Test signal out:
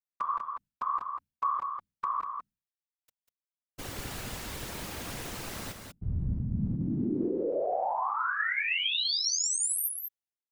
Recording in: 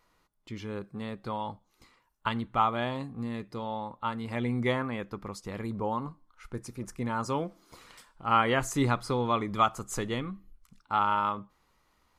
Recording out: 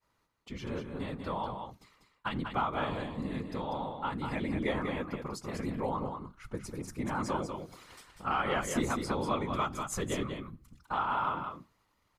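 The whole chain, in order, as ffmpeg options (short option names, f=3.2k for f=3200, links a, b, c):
-filter_complex "[0:a]acontrast=35,bandreject=f=60:t=h:w=6,bandreject=f=120:t=h:w=6,bandreject=f=180:t=h:w=6,agate=range=-33dB:threshold=-58dB:ratio=3:detection=peak,acompressor=threshold=-25dB:ratio=2,afftfilt=real='hypot(re,im)*cos(2*PI*random(0))':imag='hypot(re,im)*sin(2*PI*random(1))':win_size=512:overlap=0.75,asplit=2[a][b];[b]aecho=0:1:194:0.501[c];[a][c]amix=inputs=2:normalize=0"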